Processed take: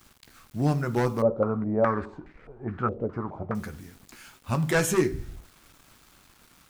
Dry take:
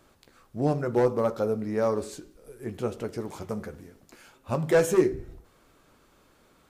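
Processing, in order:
parametric band 500 Hz −12 dB 1.3 octaves
bit reduction 10 bits
0:01.22–0:03.55: low-pass on a step sequencer 4.8 Hz 530–2,000 Hz
level +5.5 dB

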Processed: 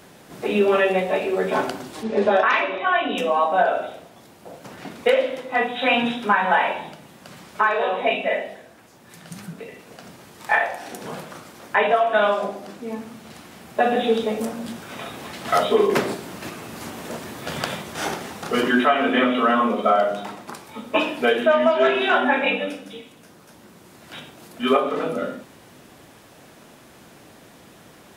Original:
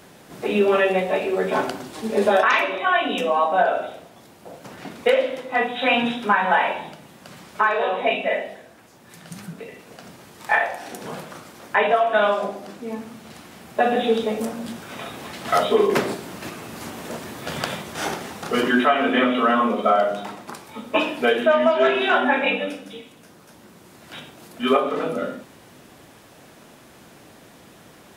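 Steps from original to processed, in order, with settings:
0:02.03–0:03.17: high-frequency loss of the air 120 metres

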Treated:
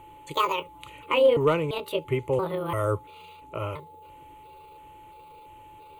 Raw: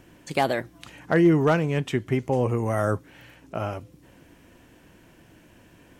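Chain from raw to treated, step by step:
pitch shifter gated in a rhythm +7.5 semitones, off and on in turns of 341 ms
steady tone 860 Hz −43 dBFS
phaser with its sweep stopped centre 1,100 Hz, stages 8
level +1.5 dB

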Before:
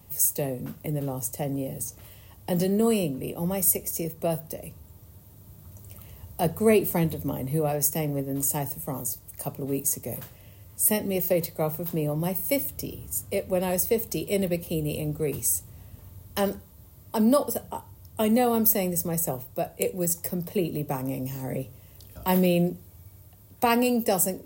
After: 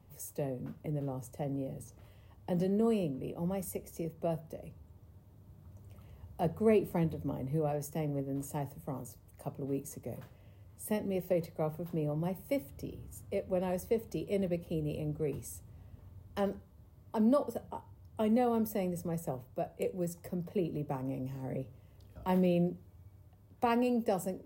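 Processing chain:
low-pass filter 1,500 Hz 6 dB per octave
level −6.5 dB

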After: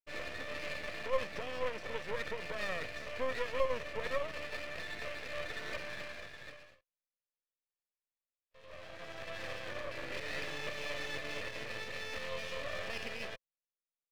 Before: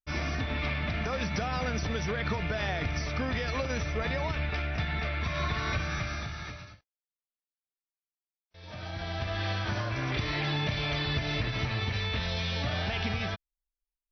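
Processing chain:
formant filter e
half-wave rectification
level +9 dB

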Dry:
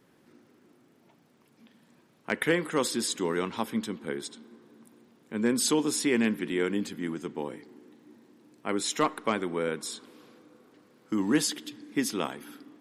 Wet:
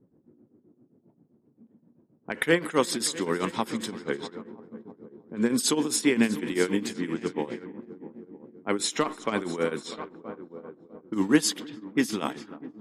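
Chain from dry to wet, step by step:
echo machine with several playback heads 323 ms, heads all three, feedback 45%, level −18.5 dB
low-pass that shuts in the quiet parts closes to 350 Hz, open at −26.5 dBFS
shaped tremolo triangle 7.6 Hz, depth 85%
level +6 dB

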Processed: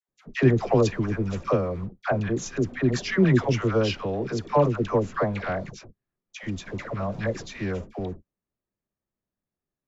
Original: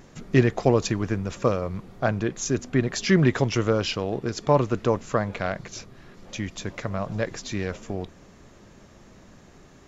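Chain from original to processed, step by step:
noise gate −37 dBFS, range −40 dB
low-pass filter 3,400 Hz 6 dB per octave
all-pass dispersion lows, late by 92 ms, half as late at 820 Hz

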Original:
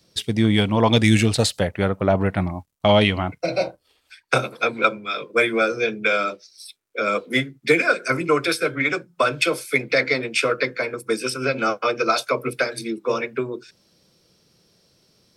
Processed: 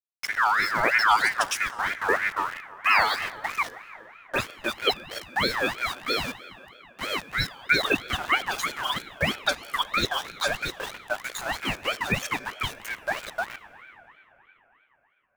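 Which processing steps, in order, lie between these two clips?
spectral dynamics exaggerated over time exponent 1.5
high-shelf EQ 9,300 Hz −5 dB
all-pass dispersion highs, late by 77 ms, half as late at 1,700 Hz
hum with harmonics 60 Hz, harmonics 14, −40 dBFS −4 dB per octave
centre clipping without the shift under −30 dBFS
dense smooth reverb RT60 4.1 s, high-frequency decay 0.4×, DRR 14.5 dB
ring modulator whose carrier an LFO sweeps 1,500 Hz, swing 30%, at 3.1 Hz

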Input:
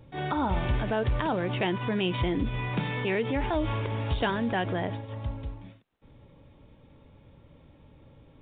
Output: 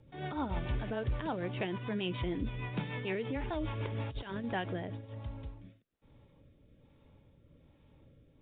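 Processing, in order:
0:03.80–0:04.44: compressor whose output falls as the input rises −30 dBFS, ratio −0.5
rotating-speaker cabinet horn 6.7 Hz, later 1.2 Hz, at 0:03.74
level −6 dB

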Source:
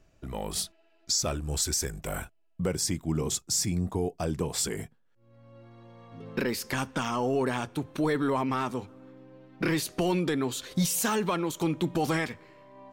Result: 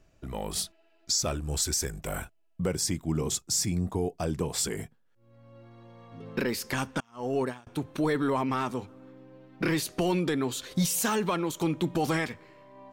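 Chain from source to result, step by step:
0:07.00–0:07.67: noise gate −26 dBFS, range −33 dB

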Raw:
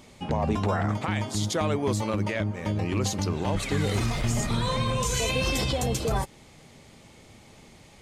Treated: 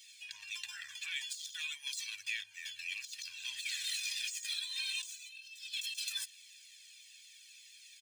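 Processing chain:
running median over 3 samples
inverse Chebyshev high-pass filter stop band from 740 Hz, stop band 60 dB
comb filter 1.2 ms, depth 90%
compressor whose output falls as the input rises −37 dBFS, ratio −0.5
flanger whose copies keep moving one way falling 1.7 Hz
level +1.5 dB

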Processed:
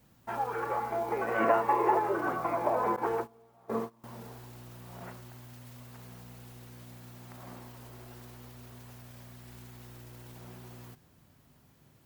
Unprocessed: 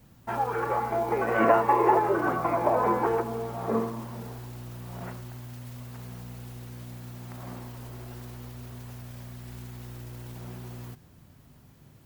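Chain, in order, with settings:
0:02.96–0:04.04: noise gate −28 dBFS, range −21 dB
low-shelf EQ 220 Hz −6.5 dB
level −4 dB

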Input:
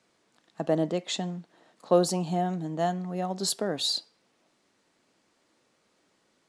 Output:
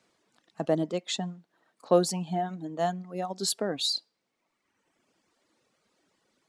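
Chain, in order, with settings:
reverb reduction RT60 1.3 s

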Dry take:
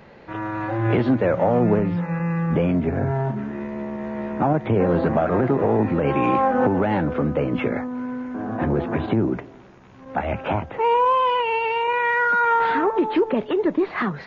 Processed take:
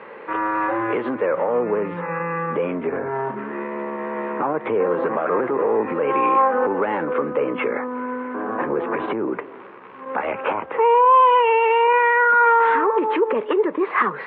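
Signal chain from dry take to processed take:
in parallel at 0 dB: downward compressor, threshold −32 dBFS, peak gain reduction 16.5 dB
on the sum: brickwall limiter −14 dBFS, peak gain reduction 7 dB
loudspeaker in its box 410–2,700 Hz, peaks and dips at 460 Hz +6 dB, 690 Hz −8 dB, 1,100 Hz +7 dB
level +3 dB

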